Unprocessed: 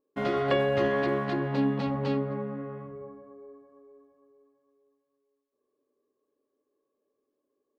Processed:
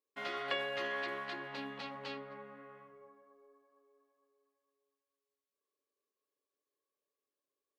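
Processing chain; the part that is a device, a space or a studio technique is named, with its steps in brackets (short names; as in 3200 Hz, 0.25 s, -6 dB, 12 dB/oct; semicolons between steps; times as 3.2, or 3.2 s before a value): filter by subtraction (in parallel: LPF 2600 Hz 12 dB/oct + phase invert); on the sum: gain -4 dB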